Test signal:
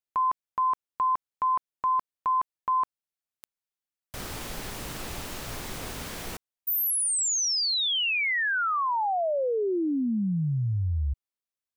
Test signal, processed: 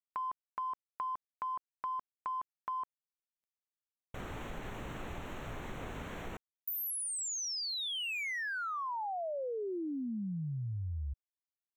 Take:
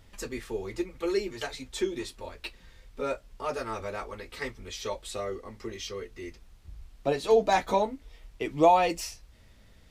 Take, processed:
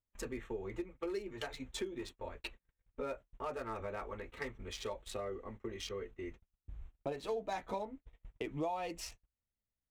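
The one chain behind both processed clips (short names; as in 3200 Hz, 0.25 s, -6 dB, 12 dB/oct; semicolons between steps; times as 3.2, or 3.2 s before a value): Wiener smoothing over 9 samples; compressor 4:1, threshold -35 dBFS; gate -46 dBFS, range -36 dB; gain -2.5 dB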